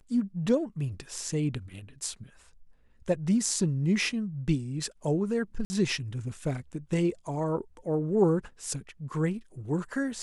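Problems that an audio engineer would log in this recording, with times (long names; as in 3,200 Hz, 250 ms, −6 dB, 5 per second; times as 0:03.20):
0:05.65–0:05.70: drop-out 50 ms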